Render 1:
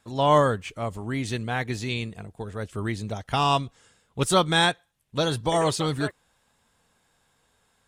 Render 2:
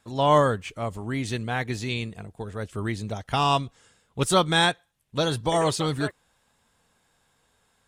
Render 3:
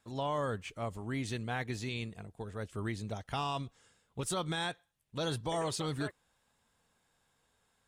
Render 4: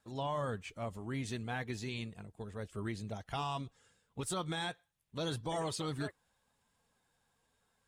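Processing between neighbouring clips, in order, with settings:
nothing audible
limiter -17.5 dBFS, peak gain reduction 10 dB; gain -7.5 dB
bin magnitudes rounded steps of 15 dB; gain -2 dB

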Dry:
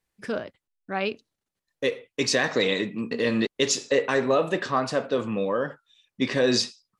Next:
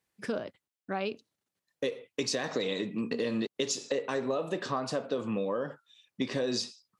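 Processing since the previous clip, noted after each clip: HPF 100 Hz; dynamic EQ 1900 Hz, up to -6 dB, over -42 dBFS, Q 1.3; compressor, threshold -28 dBFS, peak gain reduction 10.5 dB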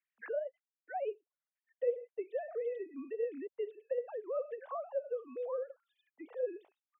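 sine-wave speech; auto-wah 670–2200 Hz, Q 2.1, down, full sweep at -34 dBFS; vocal rider within 4 dB 0.5 s; gain -1 dB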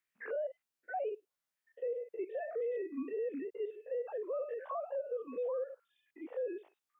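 stepped spectrum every 50 ms; limiter -37 dBFS, peak gain reduction 10.5 dB; gain +6 dB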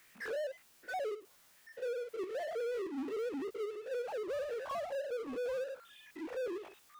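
power-law curve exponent 0.5; gain -2.5 dB

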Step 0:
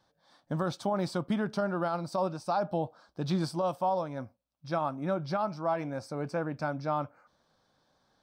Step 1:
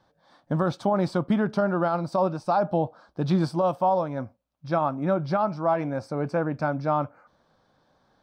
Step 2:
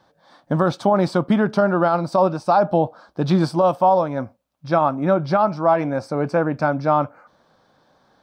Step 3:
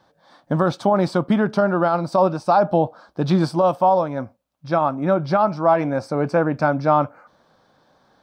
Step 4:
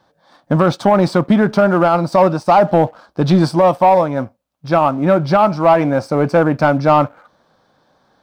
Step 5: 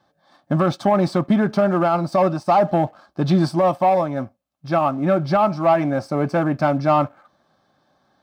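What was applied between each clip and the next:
high shelf 3600 Hz -11.5 dB; gain +7 dB
low shelf 100 Hz -9 dB; gain +7 dB
vocal rider 2 s
sample leveller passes 1; gain +3 dB
notch comb 480 Hz; gain -4.5 dB

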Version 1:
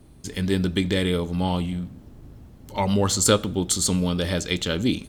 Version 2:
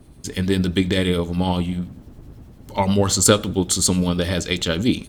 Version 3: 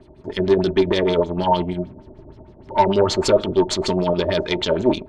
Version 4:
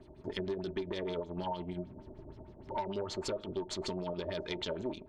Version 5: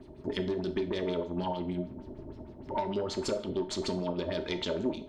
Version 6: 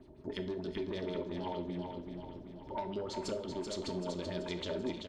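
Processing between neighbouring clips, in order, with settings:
harmonic tremolo 10 Hz, depth 50%, crossover 2000 Hz; gain +5.5 dB
tube stage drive 19 dB, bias 0.65; LFO low-pass sine 6.5 Hz 560–5300 Hz; small resonant body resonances 380/620/900 Hz, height 15 dB, ringing for 70 ms
compressor 6:1, threshold -27 dBFS, peak gain reduction 16.5 dB; gain -7.5 dB
bell 250 Hz +5.5 dB 0.76 oct; on a send at -8.5 dB: reverb, pre-delay 6 ms; on the sum: gain +3 dB
feedback echo 0.384 s, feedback 52%, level -6 dB; gain -6.5 dB

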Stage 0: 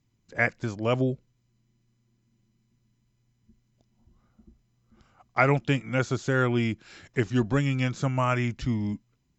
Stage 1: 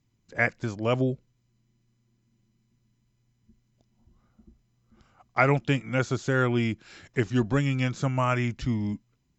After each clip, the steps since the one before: nothing audible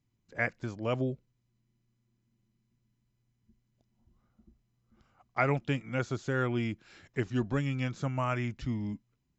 high shelf 5300 Hz -5 dB; gain -6 dB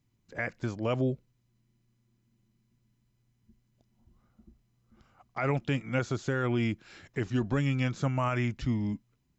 limiter -23.5 dBFS, peak gain reduction 11 dB; gain +4 dB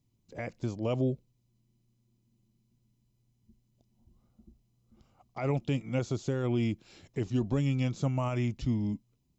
bell 1600 Hz -13.5 dB 0.95 oct

